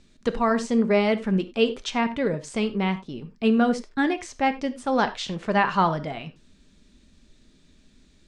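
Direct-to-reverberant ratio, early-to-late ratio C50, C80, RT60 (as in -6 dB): 9.0 dB, 14.5 dB, 19.0 dB, no single decay rate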